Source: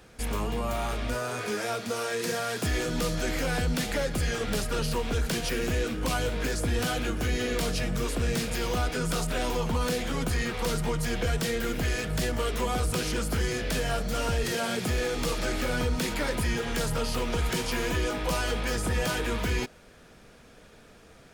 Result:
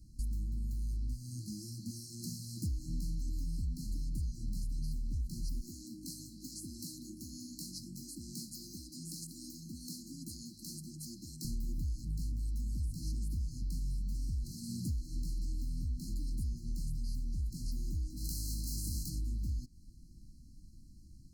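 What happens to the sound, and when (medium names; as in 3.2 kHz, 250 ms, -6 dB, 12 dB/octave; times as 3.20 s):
5.61–11.45 s: high-pass 340 Hz
18.16–19.08 s: spectral contrast reduction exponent 0.44
whole clip: FFT band-reject 350–4000 Hz; amplifier tone stack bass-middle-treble 10-0-1; compression 6:1, threshold -45 dBFS; trim +11.5 dB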